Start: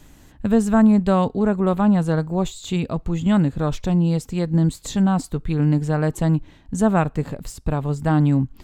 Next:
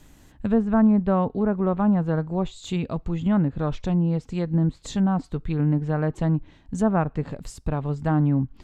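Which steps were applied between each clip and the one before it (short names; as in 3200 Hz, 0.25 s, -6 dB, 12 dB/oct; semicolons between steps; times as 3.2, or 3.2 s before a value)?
treble ducked by the level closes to 1700 Hz, closed at -14.5 dBFS; gain -3.5 dB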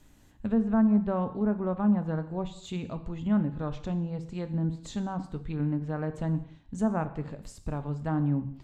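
non-linear reverb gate 0.27 s falling, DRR 9.5 dB; gain -7.5 dB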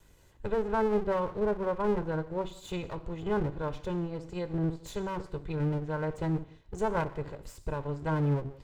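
minimum comb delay 2 ms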